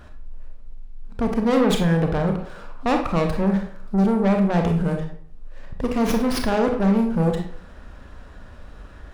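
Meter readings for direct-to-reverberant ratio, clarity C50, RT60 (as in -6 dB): 3.0 dB, 6.5 dB, 0.60 s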